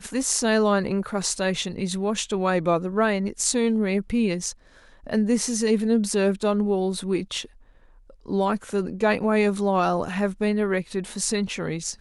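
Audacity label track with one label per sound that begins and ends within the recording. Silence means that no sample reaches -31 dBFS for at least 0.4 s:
5.070000	7.450000	sound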